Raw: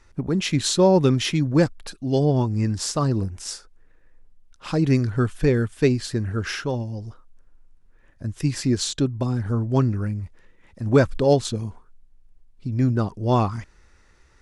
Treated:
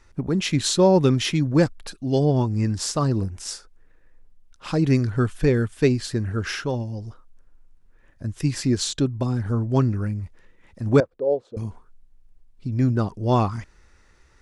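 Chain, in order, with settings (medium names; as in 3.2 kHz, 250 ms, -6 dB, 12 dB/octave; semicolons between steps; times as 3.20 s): 11.00–11.57 s: band-pass filter 500 Hz, Q 3.8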